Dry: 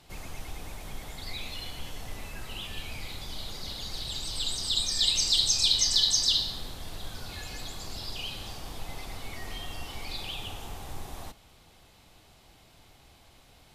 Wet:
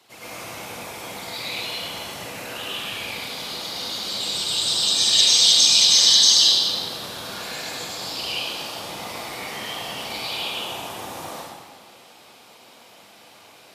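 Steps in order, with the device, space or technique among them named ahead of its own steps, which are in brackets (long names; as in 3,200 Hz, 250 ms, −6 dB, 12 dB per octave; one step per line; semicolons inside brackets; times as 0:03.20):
whispering ghost (random phases in short frames; high-pass filter 320 Hz 12 dB per octave; convolution reverb RT60 1.6 s, pre-delay 91 ms, DRR −9.5 dB)
level +1.5 dB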